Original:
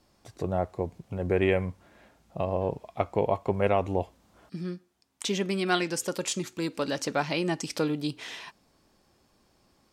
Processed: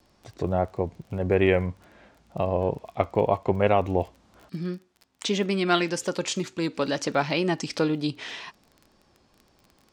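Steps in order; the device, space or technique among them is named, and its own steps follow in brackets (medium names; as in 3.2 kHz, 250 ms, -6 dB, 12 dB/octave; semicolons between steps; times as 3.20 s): lo-fi chain (low-pass 6.2 kHz 12 dB/octave; wow and flutter; crackle 22 per s -42 dBFS); trim +3.5 dB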